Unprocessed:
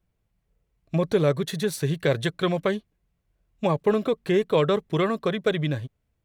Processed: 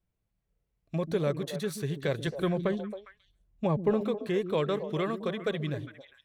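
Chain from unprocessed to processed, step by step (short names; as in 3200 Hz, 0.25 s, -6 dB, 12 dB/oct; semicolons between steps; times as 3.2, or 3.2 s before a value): 2.27–4.01 tilt -2 dB/oct; on a send: delay with a stepping band-pass 0.135 s, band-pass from 240 Hz, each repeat 1.4 oct, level -5 dB; on the sum: gain -7.5 dB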